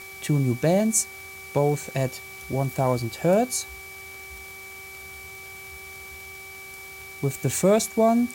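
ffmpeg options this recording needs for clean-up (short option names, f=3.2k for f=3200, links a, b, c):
-af "adeclick=t=4,bandreject=f=385.8:t=h:w=4,bandreject=f=771.6:t=h:w=4,bandreject=f=1.1574k:t=h:w=4,bandreject=f=2.3k:w=30,afwtdn=0.005"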